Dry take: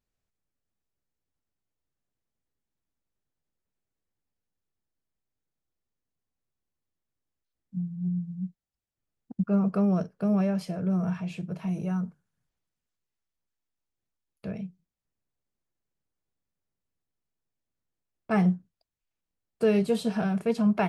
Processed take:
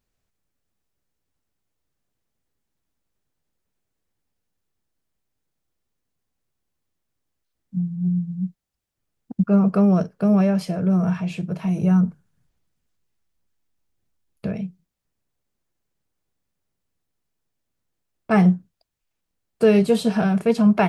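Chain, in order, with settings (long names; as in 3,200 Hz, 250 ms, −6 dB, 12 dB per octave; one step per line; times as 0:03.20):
0:11.82–0:14.47: low-shelf EQ 300 Hz +7 dB
level +7.5 dB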